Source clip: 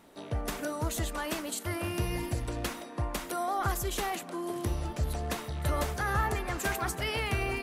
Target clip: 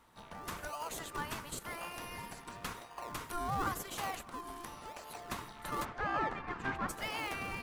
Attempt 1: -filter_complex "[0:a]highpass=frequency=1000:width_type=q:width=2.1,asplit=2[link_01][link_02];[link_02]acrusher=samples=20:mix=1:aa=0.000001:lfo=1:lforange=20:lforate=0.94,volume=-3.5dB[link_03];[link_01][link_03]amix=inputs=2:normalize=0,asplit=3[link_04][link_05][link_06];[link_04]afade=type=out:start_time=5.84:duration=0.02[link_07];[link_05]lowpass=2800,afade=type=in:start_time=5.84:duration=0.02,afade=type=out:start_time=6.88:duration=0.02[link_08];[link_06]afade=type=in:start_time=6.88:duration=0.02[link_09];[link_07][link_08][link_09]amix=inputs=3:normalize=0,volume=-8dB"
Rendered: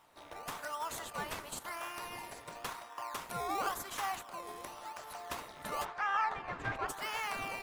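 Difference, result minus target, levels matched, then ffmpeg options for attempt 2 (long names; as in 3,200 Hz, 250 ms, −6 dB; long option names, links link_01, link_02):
sample-and-hold swept by an LFO: distortion −23 dB
-filter_complex "[0:a]highpass=frequency=1000:width_type=q:width=2.1,asplit=2[link_01][link_02];[link_02]acrusher=samples=45:mix=1:aa=0.000001:lfo=1:lforange=45:lforate=0.94,volume=-3.5dB[link_03];[link_01][link_03]amix=inputs=2:normalize=0,asplit=3[link_04][link_05][link_06];[link_04]afade=type=out:start_time=5.84:duration=0.02[link_07];[link_05]lowpass=2800,afade=type=in:start_time=5.84:duration=0.02,afade=type=out:start_time=6.88:duration=0.02[link_08];[link_06]afade=type=in:start_time=6.88:duration=0.02[link_09];[link_07][link_08][link_09]amix=inputs=3:normalize=0,volume=-8dB"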